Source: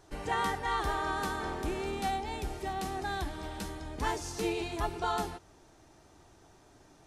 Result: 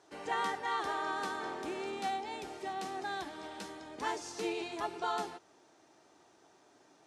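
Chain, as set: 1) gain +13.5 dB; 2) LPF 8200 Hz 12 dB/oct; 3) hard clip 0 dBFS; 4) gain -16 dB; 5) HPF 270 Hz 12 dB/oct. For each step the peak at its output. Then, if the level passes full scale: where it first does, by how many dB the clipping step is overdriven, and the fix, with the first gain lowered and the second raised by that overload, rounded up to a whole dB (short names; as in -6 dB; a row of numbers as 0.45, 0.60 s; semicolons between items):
-5.0, -5.0, -5.0, -21.0, -21.0 dBFS; no overload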